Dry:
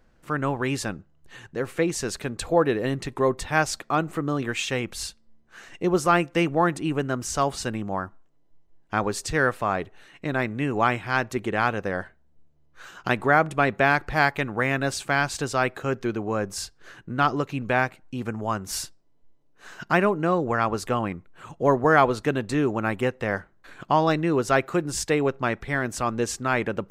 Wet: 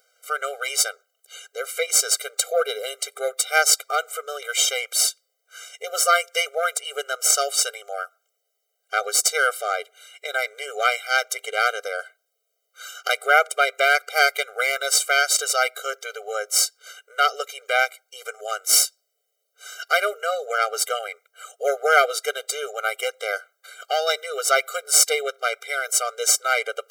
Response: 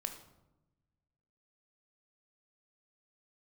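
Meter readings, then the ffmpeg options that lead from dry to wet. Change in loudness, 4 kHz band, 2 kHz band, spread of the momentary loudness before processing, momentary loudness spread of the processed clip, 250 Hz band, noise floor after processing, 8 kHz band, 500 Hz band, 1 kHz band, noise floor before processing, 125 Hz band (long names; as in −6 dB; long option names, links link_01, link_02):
+3.5 dB, +11.0 dB, +4.0 dB, 11 LU, 14 LU, below −30 dB, −76 dBFS, +14.5 dB, −1.0 dB, +0.5 dB, −59 dBFS, below −40 dB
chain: -af "crystalizer=i=10:c=0,aeval=exprs='1.88*(cos(1*acos(clip(val(0)/1.88,-1,1)))-cos(1*PI/2))+0.211*(cos(2*acos(clip(val(0)/1.88,-1,1)))-cos(2*PI/2))+0.119*(cos(6*acos(clip(val(0)/1.88,-1,1)))-cos(6*PI/2))':channel_layout=same,afftfilt=real='re*eq(mod(floor(b*sr/1024/400),2),1)':imag='im*eq(mod(floor(b*sr/1024/400),2),1)':win_size=1024:overlap=0.75,volume=-2.5dB"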